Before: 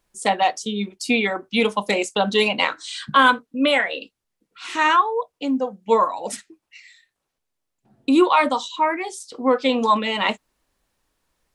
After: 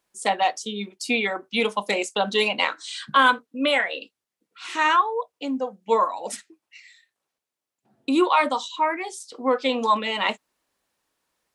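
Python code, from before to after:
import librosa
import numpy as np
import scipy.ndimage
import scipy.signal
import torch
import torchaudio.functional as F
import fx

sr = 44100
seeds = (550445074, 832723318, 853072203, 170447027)

y = fx.highpass(x, sr, hz=290.0, slope=6)
y = y * 10.0 ** (-2.0 / 20.0)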